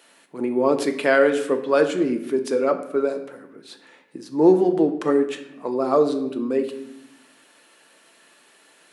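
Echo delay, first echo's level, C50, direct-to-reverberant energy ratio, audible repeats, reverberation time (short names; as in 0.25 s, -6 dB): none, none, 10.5 dB, 6.0 dB, none, 0.80 s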